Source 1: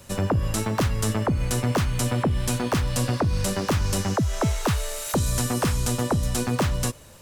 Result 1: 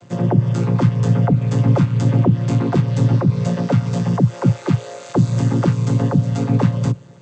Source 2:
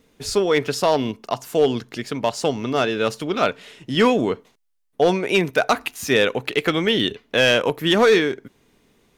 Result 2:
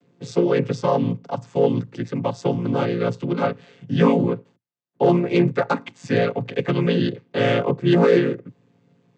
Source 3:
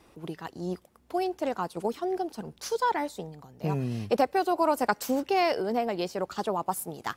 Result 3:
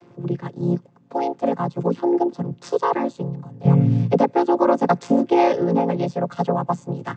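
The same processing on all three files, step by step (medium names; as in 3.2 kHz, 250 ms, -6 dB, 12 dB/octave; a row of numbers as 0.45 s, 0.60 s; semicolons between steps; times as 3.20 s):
vocoder on a held chord minor triad, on A#2; peak normalisation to -3 dBFS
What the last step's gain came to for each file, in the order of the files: +10.0 dB, +1.0 dB, +10.0 dB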